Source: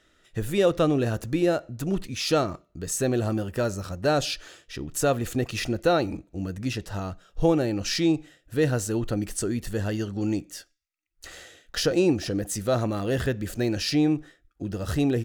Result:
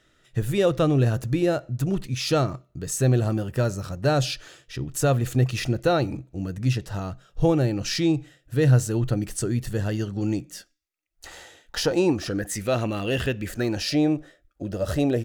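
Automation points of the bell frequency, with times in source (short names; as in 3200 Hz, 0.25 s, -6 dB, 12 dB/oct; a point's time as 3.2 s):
bell +13 dB 0.32 oct
10.42 s 130 Hz
11.29 s 890 Hz
12.05 s 890 Hz
12.75 s 2800 Hz
13.39 s 2800 Hz
13.88 s 590 Hz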